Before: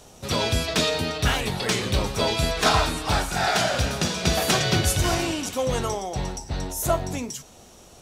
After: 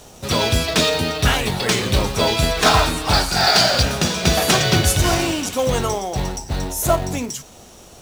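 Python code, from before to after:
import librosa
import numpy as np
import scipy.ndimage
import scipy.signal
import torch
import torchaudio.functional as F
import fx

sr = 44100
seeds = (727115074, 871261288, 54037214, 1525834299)

p1 = fx.peak_eq(x, sr, hz=4600.0, db=13.0, octaves=0.3, at=(3.13, 3.83))
p2 = fx.quant_companded(p1, sr, bits=4)
p3 = p1 + (p2 * 10.0 ** (-4.0 / 20.0))
y = p3 * 10.0 ** (1.0 / 20.0)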